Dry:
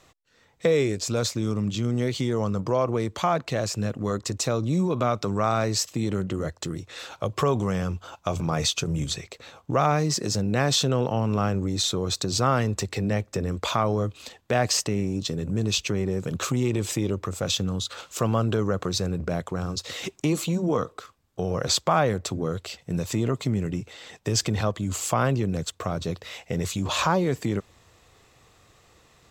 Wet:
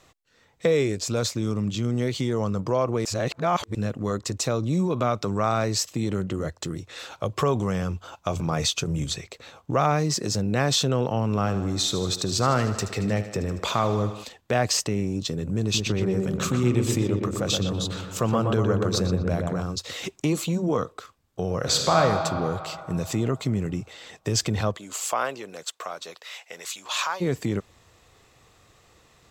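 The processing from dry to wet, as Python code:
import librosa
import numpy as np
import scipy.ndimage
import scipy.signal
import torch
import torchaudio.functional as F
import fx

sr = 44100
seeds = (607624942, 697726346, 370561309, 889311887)

y = fx.echo_thinned(x, sr, ms=77, feedback_pct=70, hz=160.0, wet_db=-12.0, at=(11.45, 14.23), fade=0.02)
y = fx.echo_filtered(y, sr, ms=121, feedback_pct=62, hz=1600.0, wet_db=-3.0, at=(15.62, 19.62))
y = fx.reverb_throw(y, sr, start_s=21.58, length_s=0.42, rt60_s=2.9, drr_db=1.0)
y = fx.highpass(y, sr, hz=fx.line((24.76, 460.0), (27.2, 1200.0)), slope=12, at=(24.76, 27.2), fade=0.02)
y = fx.edit(y, sr, fx.reverse_span(start_s=3.05, length_s=0.7), tone=tone)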